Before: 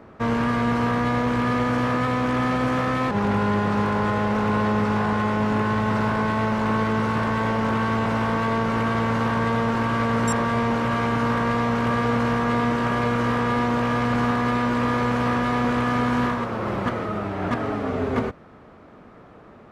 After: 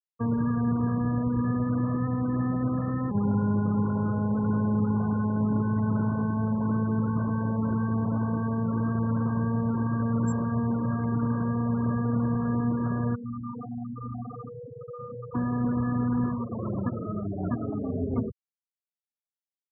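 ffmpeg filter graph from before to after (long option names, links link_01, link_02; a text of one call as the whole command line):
ffmpeg -i in.wav -filter_complex "[0:a]asettb=1/sr,asplit=3[link_01][link_02][link_03];[link_01]atrim=end=13.154[link_04];[link_02]atrim=start=13.15:end=15.35,asetpts=PTS-STARTPTS,afade=type=in:duration=0.004:curve=qsin,afade=type=out:start_time=2.196:duration=0.004:curve=qsin,aeval=exprs='(tanh(31.6*val(0)+0.65)-tanh(0.65))/31.6':channel_layout=same,aecho=1:1:93:0.596,atrim=end_sample=97020[link_05];[link_03]atrim=start=15.346[link_06];[link_04][link_05]acrossfade=duration=0.004:curve1=hsin:curve2=qsin[link_07];[link_07][link_06]acrossfade=duration=0.004:curve1=qsin:curve2=hsin,highpass=49,afftfilt=real='re*gte(hypot(re,im),0.141)':imag='im*gte(hypot(re,im),0.141)':win_size=1024:overlap=0.75,acrossover=split=290[link_08][link_09];[link_09]acompressor=threshold=-38dB:ratio=4[link_10];[link_08][link_10]amix=inputs=2:normalize=0" out.wav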